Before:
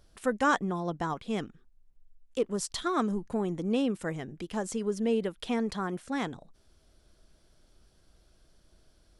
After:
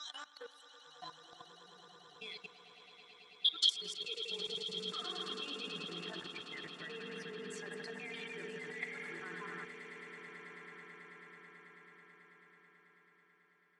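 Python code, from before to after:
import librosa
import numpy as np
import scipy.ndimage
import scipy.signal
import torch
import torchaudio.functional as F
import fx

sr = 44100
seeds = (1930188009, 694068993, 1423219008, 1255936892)

p1 = fx.block_reorder(x, sr, ms=82.0, group=7)
p2 = fx.low_shelf(p1, sr, hz=96.0, db=-9.5)
p3 = fx.rev_spring(p2, sr, rt60_s=2.2, pass_ms=(54,), chirp_ms=70, drr_db=1.0)
p4 = fx.stretch_grains(p3, sr, factor=1.5, grain_ms=40.0)
p5 = fx.rider(p4, sr, range_db=4, speed_s=0.5)
p6 = p4 + (p5 * 10.0 ** (-1.0 / 20.0))
p7 = fx.noise_reduce_blind(p6, sr, reduce_db=15)
p8 = fx.filter_sweep_bandpass(p7, sr, from_hz=4200.0, to_hz=1800.0, start_s=2.9, end_s=5.3, q=4.9)
p9 = fx.level_steps(p8, sr, step_db=20)
p10 = p9 + fx.echo_swell(p9, sr, ms=109, loudest=8, wet_db=-16.0, dry=0)
y = p10 * 10.0 ** (13.0 / 20.0)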